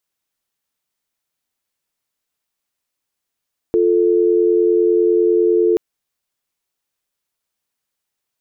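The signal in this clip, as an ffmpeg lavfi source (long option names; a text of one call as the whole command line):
ffmpeg -f lavfi -i "aevalsrc='0.2*(sin(2*PI*350*t)+sin(2*PI*440*t))':duration=2.03:sample_rate=44100" out.wav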